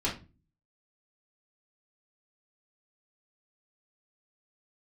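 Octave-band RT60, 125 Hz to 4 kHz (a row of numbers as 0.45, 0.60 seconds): 0.65, 0.55, 0.35, 0.25, 0.25, 0.25 seconds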